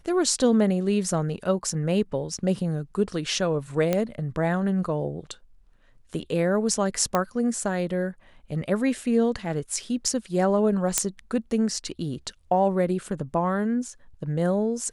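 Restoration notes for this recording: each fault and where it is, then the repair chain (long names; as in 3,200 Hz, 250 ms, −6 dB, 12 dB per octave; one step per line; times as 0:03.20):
0:03.93: click −10 dBFS
0:07.15: click −9 dBFS
0:10.98: click −3 dBFS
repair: click removal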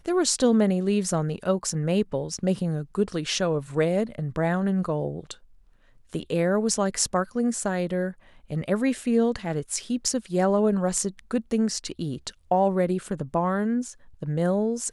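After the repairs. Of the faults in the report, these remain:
none of them is left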